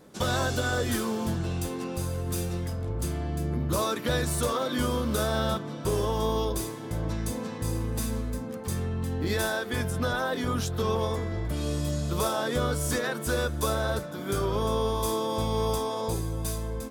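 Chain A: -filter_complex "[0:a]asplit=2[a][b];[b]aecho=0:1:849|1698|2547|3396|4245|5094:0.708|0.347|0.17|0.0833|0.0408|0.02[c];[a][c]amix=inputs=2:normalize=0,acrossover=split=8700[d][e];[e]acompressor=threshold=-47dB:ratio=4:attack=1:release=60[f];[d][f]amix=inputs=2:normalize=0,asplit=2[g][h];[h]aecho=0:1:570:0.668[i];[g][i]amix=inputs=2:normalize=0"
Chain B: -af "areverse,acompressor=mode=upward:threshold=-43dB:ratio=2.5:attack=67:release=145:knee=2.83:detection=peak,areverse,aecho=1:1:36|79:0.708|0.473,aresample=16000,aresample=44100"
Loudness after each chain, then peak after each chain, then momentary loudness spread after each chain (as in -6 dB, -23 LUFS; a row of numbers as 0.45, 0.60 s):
-25.5, -26.5 LUFS; -10.0, -11.5 dBFS; 4, 6 LU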